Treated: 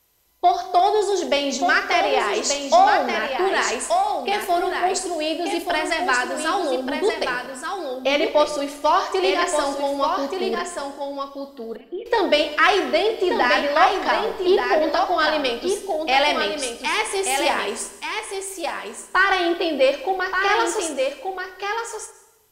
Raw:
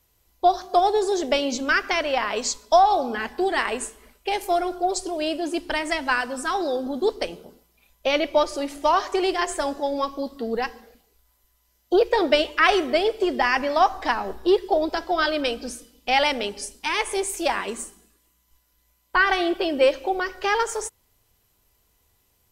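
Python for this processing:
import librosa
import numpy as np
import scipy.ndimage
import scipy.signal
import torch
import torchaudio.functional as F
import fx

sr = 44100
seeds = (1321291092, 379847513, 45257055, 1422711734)

p1 = fx.low_shelf(x, sr, hz=170.0, db=-10.5)
p2 = 10.0 ** (-19.0 / 20.0) * np.tanh(p1 / 10.0 ** (-19.0 / 20.0))
p3 = p1 + (p2 * librosa.db_to_amplitude(-7.5))
p4 = fx.formant_cascade(p3, sr, vowel='i', at=(10.58, 12.06))
p5 = fx.doubler(p4, sr, ms=47.0, db=-11.0)
p6 = p5 + 10.0 ** (-5.5 / 20.0) * np.pad(p5, (int(1180 * sr / 1000.0), 0))[:len(p5)]
y = fx.rev_plate(p6, sr, seeds[0], rt60_s=0.92, hf_ratio=0.9, predelay_ms=105, drr_db=15.5)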